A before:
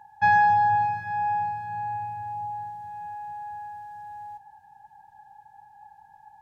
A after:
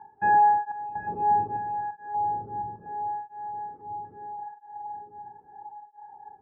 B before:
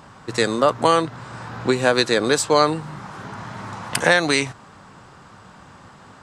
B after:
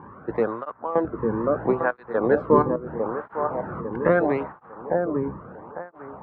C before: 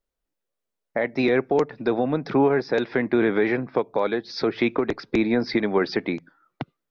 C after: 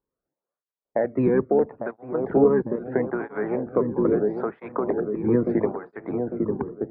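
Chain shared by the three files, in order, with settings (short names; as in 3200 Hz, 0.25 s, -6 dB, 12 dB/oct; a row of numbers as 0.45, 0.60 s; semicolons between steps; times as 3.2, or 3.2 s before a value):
octaver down 1 oct, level -2 dB; LPF 1400 Hz 24 dB/oct; in parallel at -2 dB: compressor, threshold -30 dBFS; on the sum: step gate "xxx.xxxx.xx.x" 63 bpm -12 dB; on a send: dark delay 0.851 s, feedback 47%, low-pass 890 Hz, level -4 dB; on the sum: tape flanging out of phase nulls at 0.76 Hz, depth 1.6 ms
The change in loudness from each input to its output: -2.0, -5.0, -1.0 LU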